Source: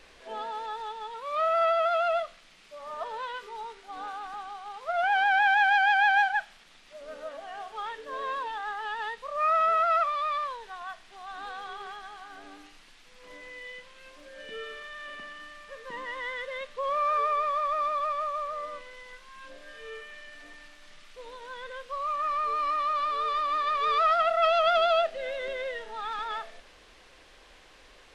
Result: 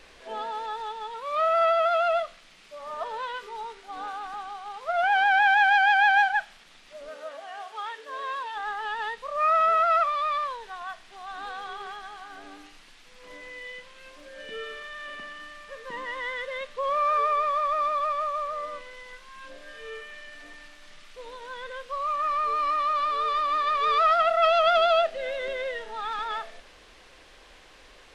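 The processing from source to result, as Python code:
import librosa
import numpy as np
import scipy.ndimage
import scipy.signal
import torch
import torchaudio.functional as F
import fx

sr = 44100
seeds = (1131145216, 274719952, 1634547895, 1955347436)

y = fx.highpass(x, sr, hz=fx.line((7.08, 450.0), (8.55, 960.0)), slope=6, at=(7.08, 8.55), fade=0.02)
y = y * librosa.db_to_amplitude(2.5)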